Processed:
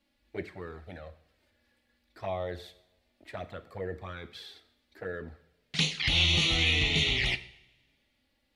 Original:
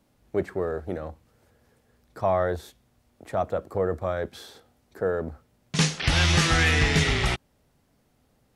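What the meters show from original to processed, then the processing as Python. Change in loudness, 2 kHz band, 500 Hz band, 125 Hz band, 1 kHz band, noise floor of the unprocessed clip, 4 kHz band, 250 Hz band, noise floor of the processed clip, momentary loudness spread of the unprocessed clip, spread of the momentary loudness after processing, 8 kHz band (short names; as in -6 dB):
-2.0 dB, -4.5 dB, -11.5 dB, -8.5 dB, -12.5 dB, -67 dBFS, +1.5 dB, -9.0 dB, -75 dBFS, 15 LU, 21 LU, -9.0 dB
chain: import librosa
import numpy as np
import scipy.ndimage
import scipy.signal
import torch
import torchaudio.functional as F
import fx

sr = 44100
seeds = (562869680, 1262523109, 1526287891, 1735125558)

y = fx.env_flanger(x, sr, rest_ms=3.6, full_db=-19.0)
y = fx.band_shelf(y, sr, hz=2900.0, db=11.5, octaves=1.7)
y = fx.rev_double_slope(y, sr, seeds[0], early_s=0.66, late_s=1.9, knee_db=-20, drr_db=12.0)
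y = y * librosa.db_to_amplitude(-8.5)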